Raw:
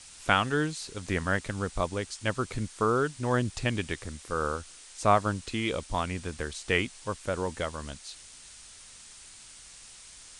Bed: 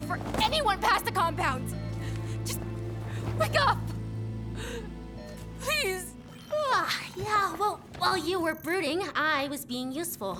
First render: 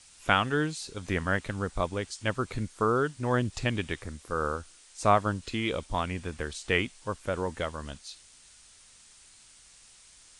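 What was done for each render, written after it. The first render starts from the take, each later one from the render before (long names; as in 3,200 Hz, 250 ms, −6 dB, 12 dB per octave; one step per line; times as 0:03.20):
noise reduction from a noise print 6 dB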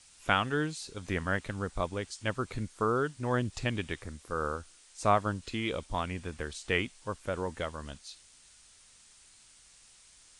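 level −3 dB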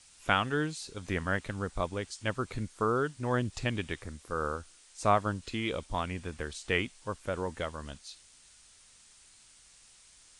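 no processing that can be heard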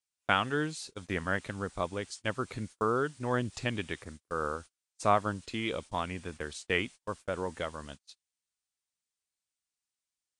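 high-pass filter 110 Hz 6 dB per octave
noise gate −44 dBFS, range −33 dB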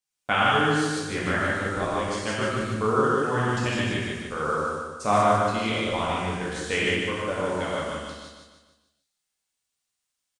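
repeating echo 149 ms, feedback 48%, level −4.5 dB
reverb whose tail is shaped and stops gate 220 ms flat, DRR −6 dB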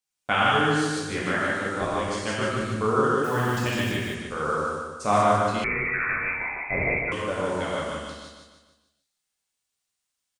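0:01.22–0:01.81: high-pass filter 140 Hz
0:03.24–0:04.16: one scale factor per block 5 bits
0:05.64–0:07.12: voice inversion scrambler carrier 2,500 Hz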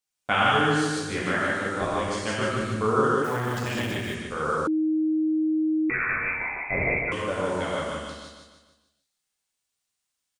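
0:03.22–0:04.08: saturating transformer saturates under 550 Hz
0:04.67–0:05.90: beep over 313 Hz −20.5 dBFS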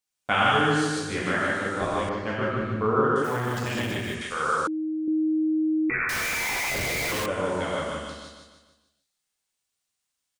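0:02.09–0:03.16: low-pass filter 2,100 Hz
0:04.21–0:05.08: tilt shelving filter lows −7 dB, about 790 Hz
0:06.09–0:07.26: sign of each sample alone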